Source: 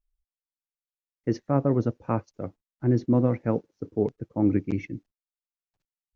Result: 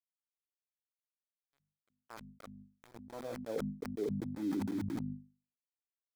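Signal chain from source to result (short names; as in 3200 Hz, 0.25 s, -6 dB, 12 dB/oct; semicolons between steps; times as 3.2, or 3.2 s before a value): reverse; compressor 5:1, threshold -32 dBFS, peak gain reduction 14 dB; reverse; band-pass sweep 3300 Hz -> 270 Hz, 1.42–4.37; sample gate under -46.5 dBFS; notch 2800 Hz, Q 6.1; gate with hold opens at -42 dBFS; notches 50/100/150/200/250 Hz; sustainer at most 29 dB/s; gain +1 dB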